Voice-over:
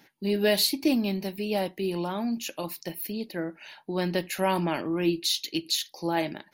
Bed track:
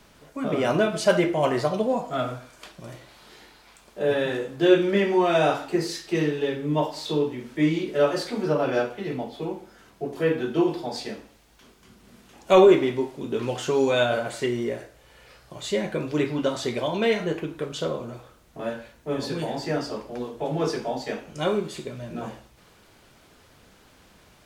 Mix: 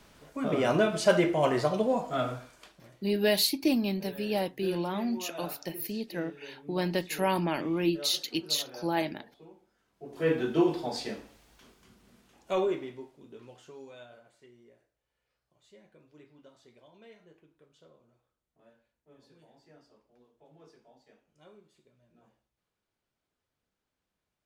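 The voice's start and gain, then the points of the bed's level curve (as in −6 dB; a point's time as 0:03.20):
2.80 s, −2.0 dB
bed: 0:02.41 −3 dB
0:03.13 −22 dB
0:09.88 −22 dB
0:10.30 −2.5 dB
0:11.48 −2.5 dB
0:14.34 −31.5 dB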